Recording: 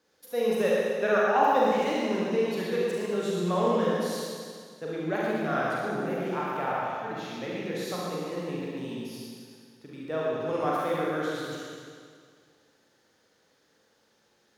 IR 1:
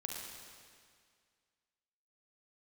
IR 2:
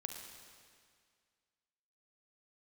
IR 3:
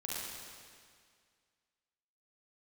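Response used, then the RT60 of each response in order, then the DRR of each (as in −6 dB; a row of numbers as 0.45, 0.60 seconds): 3; 2.0, 2.0, 2.0 seconds; −1.0, 3.5, −6.0 decibels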